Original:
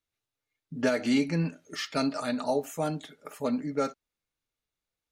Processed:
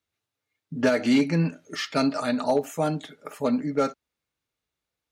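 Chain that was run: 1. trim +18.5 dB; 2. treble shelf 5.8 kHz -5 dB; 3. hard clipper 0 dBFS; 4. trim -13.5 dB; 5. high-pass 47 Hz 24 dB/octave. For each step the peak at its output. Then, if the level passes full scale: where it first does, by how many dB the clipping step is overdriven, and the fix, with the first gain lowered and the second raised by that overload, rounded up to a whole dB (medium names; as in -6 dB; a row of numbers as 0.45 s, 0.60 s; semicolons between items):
+3.0 dBFS, +3.0 dBFS, 0.0 dBFS, -13.5 dBFS, -10.5 dBFS; step 1, 3.0 dB; step 1 +15.5 dB, step 4 -10.5 dB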